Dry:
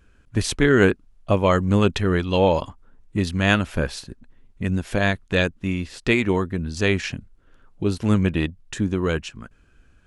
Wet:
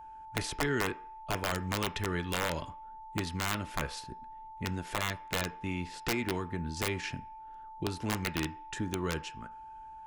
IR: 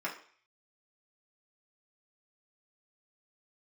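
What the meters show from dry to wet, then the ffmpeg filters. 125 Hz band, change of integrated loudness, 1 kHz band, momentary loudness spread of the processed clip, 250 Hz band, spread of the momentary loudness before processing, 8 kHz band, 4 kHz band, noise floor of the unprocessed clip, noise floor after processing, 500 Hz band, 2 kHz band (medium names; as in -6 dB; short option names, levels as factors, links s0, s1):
-14.0 dB, -13.0 dB, -7.5 dB, 14 LU, -14.5 dB, 10 LU, -4.5 dB, -8.0 dB, -56 dBFS, -48 dBFS, -15.5 dB, -11.0 dB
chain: -filter_complex "[0:a]acrossover=split=310|770|2000[s0][s1][s2][s3];[s0]acompressor=threshold=0.0631:ratio=4[s4];[s1]acompressor=threshold=0.0224:ratio=4[s5];[s2]acompressor=threshold=0.0158:ratio=4[s6];[s3]acompressor=threshold=0.0355:ratio=4[s7];[s4][s5][s6][s7]amix=inputs=4:normalize=0,aeval=exprs='(mod(5.31*val(0)+1,2)-1)/5.31':c=same,aeval=exprs='val(0)+0.0126*sin(2*PI*880*n/s)':c=same,asplit=2[s8][s9];[1:a]atrim=start_sample=2205,lowpass=4500[s10];[s9][s10]afir=irnorm=-1:irlink=0,volume=0.251[s11];[s8][s11]amix=inputs=2:normalize=0,volume=0.398"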